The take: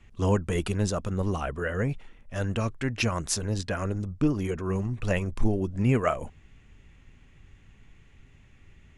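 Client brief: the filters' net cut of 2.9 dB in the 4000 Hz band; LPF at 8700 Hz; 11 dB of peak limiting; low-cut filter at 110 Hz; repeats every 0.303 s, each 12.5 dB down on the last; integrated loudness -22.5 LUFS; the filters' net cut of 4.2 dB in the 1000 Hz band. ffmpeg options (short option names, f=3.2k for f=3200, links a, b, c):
-af "highpass=110,lowpass=8.7k,equalizer=f=1k:t=o:g=-5.5,equalizer=f=4k:t=o:g=-3.5,alimiter=limit=-23dB:level=0:latency=1,aecho=1:1:303|606|909:0.237|0.0569|0.0137,volume=11.5dB"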